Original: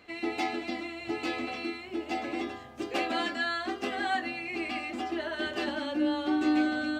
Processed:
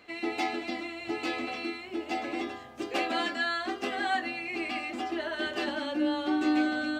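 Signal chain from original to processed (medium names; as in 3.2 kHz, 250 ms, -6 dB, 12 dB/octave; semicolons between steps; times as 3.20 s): bass shelf 160 Hz -6.5 dB; trim +1 dB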